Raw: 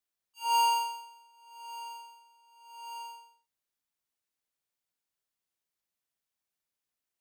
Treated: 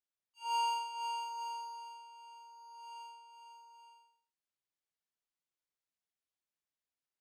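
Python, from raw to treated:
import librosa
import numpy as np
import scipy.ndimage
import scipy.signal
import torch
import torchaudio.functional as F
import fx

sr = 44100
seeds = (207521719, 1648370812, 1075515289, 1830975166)

y = scipy.signal.sosfilt(scipy.signal.bessel(2, 6900.0, 'lowpass', norm='mag', fs=sr, output='sos'), x)
y = fx.echo_multitap(y, sr, ms=(502, 869), db=(-6.5, -10.0))
y = y * librosa.db_to_amplitude(-7.5)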